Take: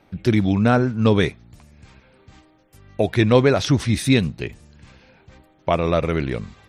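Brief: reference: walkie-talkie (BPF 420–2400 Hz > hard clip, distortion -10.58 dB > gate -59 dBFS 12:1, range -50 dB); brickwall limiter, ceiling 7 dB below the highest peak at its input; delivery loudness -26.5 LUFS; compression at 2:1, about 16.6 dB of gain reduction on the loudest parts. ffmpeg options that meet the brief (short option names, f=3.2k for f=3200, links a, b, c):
-af "acompressor=threshold=-43dB:ratio=2,alimiter=level_in=2.5dB:limit=-24dB:level=0:latency=1,volume=-2.5dB,highpass=420,lowpass=2.4k,asoftclip=type=hard:threshold=-37.5dB,agate=range=-50dB:threshold=-59dB:ratio=12,volume=20dB"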